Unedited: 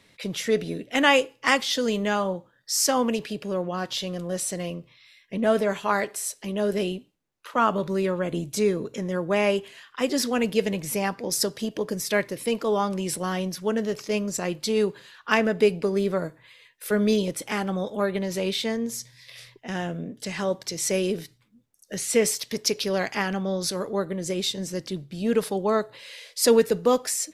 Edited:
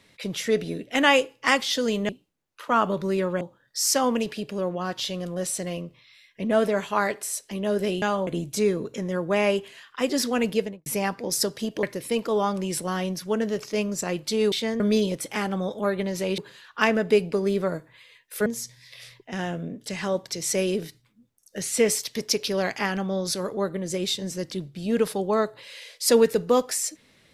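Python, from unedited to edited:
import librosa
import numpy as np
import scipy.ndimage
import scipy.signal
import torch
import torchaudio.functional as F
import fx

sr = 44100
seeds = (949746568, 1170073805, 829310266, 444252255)

y = fx.studio_fade_out(x, sr, start_s=10.5, length_s=0.36)
y = fx.edit(y, sr, fx.swap(start_s=2.09, length_s=0.25, other_s=6.95, other_length_s=1.32),
    fx.cut(start_s=11.83, length_s=0.36),
    fx.swap(start_s=14.88, length_s=2.08, other_s=18.54, other_length_s=0.28), tone=tone)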